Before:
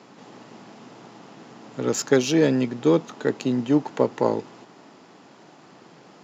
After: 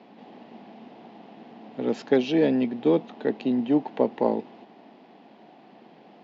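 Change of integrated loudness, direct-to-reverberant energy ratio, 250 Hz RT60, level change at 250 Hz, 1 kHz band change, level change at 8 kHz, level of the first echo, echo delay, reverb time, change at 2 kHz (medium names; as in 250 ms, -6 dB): -2.0 dB, no reverb, no reverb, -1.5 dB, -2.0 dB, no reading, no echo, no echo, no reverb, -5.5 dB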